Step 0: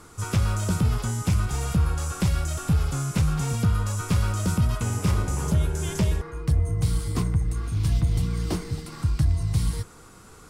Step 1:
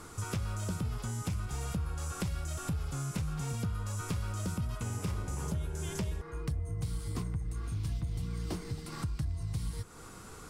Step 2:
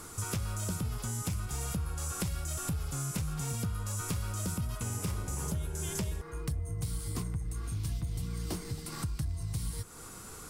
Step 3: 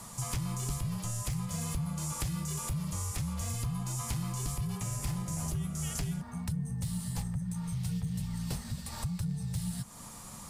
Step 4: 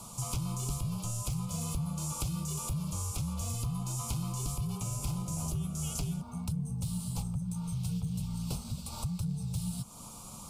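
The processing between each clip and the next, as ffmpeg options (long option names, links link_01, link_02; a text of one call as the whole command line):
ffmpeg -i in.wav -af "acompressor=threshold=-36dB:ratio=3" out.wav
ffmpeg -i in.wav -af "highshelf=frequency=7300:gain=12" out.wav
ffmpeg -i in.wav -af "afreqshift=-230" out.wav
ffmpeg -i in.wav -af "asuperstop=centerf=1800:order=4:qfactor=1.7" out.wav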